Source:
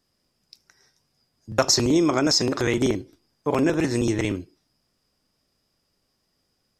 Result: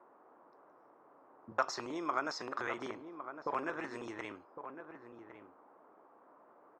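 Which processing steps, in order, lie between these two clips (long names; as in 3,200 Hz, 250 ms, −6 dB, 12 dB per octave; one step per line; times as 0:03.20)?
envelope filter 200–1,200 Hz, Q 2.1, up, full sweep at −27.5 dBFS
noise in a band 270–1,200 Hz −58 dBFS
slap from a distant wall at 190 metres, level −9 dB
level −4.5 dB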